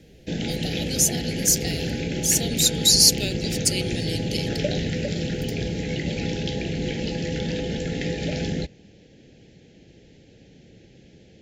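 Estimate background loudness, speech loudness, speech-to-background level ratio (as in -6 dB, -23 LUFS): -27.5 LUFS, -20.5 LUFS, 7.0 dB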